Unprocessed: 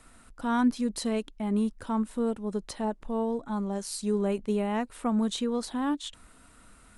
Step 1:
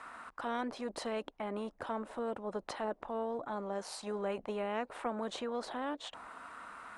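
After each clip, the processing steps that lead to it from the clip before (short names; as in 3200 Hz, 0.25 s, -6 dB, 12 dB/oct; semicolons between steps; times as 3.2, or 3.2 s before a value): auto-wah 570–1200 Hz, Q 2.8, down, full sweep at -27 dBFS; spectral compressor 2:1; gain +2 dB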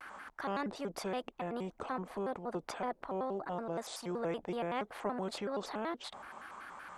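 shaped vibrato square 5.3 Hz, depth 250 cents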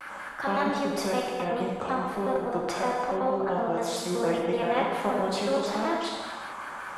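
non-linear reverb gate 0.47 s falling, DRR -3 dB; gain +6.5 dB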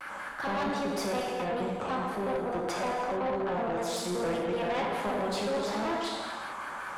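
soft clip -26 dBFS, distortion -12 dB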